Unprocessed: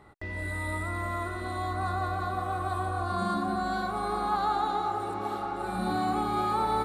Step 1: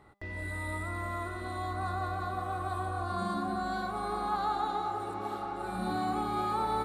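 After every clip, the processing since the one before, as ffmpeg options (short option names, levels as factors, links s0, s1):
-af "bandreject=f=200.8:t=h:w=4,bandreject=f=401.6:t=h:w=4,bandreject=f=602.4:t=h:w=4,bandreject=f=803.2:t=h:w=4,bandreject=f=1004:t=h:w=4,bandreject=f=1204.8:t=h:w=4,bandreject=f=1405.6:t=h:w=4,bandreject=f=1606.4:t=h:w=4,bandreject=f=1807.2:t=h:w=4,bandreject=f=2008:t=h:w=4,bandreject=f=2208.8:t=h:w=4,bandreject=f=2409.6:t=h:w=4,bandreject=f=2610.4:t=h:w=4,bandreject=f=2811.2:t=h:w=4,bandreject=f=3012:t=h:w=4,bandreject=f=3212.8:t=h:w=4,bandreject=f=3413.6:t=h:w=4,bandreject=f=3614.4:t=h:w=4,bandreject=f=3815.2:t=h:w=4,bandreject=f=4016:t=h:w=4,bandreject=f=4216.8:t=h:w=4,bandreject=f=4417.6:t=h:w=4,bandreject=f=4618.4:t=h:w=4,bandreject=f=4819.2:t=h:w=4,bandreject=f=5020:t=h:w=4,bandreject=f=5220.8:t=h:w=4,bandreject=f=5421.6:t=h:w=4,bandreject=f=5622.4:t=h:w=4,bandreject=f=5823.2:t=h:w=4,bandreject=f=6024:t=h:w=4,bandreject=f=6224.8:t=h:w=4,bandreject=f=6425.6:t=h:w=4,bandreject=f=6626.4:t=h:w=4,bandreject=f=6827.2:t=h:w=4,bandreject=f=7028:t=h:w=4,volume=0.668"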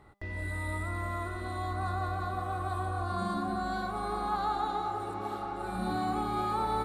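-af "lowshelf=f=83:g=6.5"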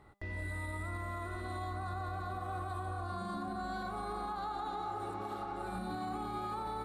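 -af "alimiter=level_in=1.68:limit=0.0631:level=0:latency=1:release=60,volume=0.596,volume=0.75"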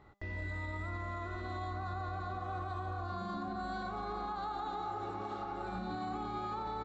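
-af "aresample=16000,aresample=44100"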